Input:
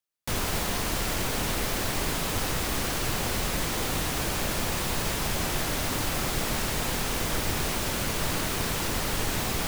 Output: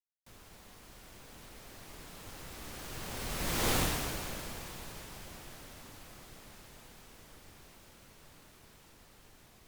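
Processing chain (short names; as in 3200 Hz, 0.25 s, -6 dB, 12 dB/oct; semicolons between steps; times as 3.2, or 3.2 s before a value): Doppler pass-by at 3.72, 13 m/s, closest 2 m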